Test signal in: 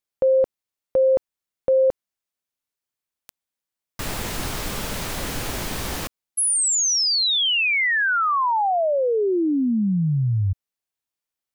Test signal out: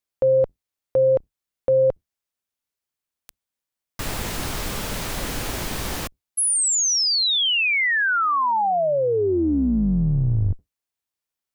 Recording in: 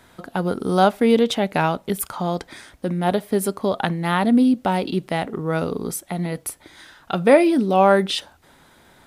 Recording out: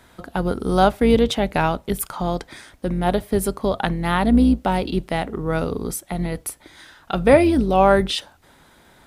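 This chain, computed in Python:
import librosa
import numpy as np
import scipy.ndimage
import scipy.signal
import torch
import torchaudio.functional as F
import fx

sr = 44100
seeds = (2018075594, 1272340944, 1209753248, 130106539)

y = fx.octave_divider(x, sr, octaves=2, level_db=-6.0)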